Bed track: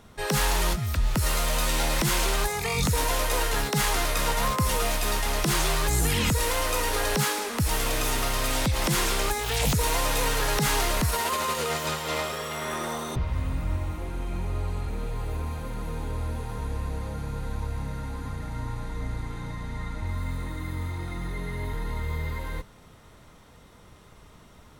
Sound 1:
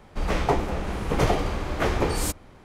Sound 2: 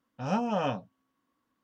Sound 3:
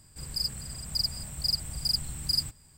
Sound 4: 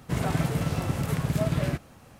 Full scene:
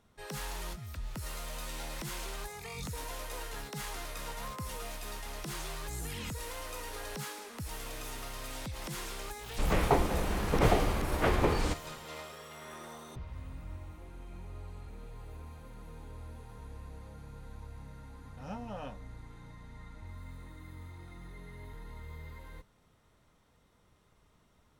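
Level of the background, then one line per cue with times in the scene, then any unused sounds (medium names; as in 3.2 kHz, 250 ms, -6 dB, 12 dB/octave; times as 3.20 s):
bed track -15.5 dB
9.42 s: add 1 -3.5 dB + low-pass 4.1 kHz
18.18 s: add 2 -13.5 dB
not used: 3, 4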